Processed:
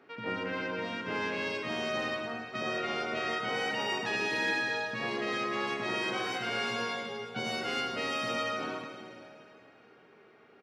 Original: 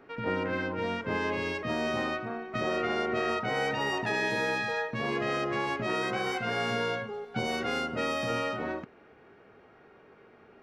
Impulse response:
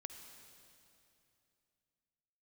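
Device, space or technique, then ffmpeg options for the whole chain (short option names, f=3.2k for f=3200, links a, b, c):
PA in a hall: -filter_complex "[0:a]highpass=140,equalizer=f=4k:t=o:w=2:g=6,aecho=1:1:104:0.376[a];[1:a]atrim=start_sample=2205[b];[a][b]afir=irnorm=-1:irlink=0"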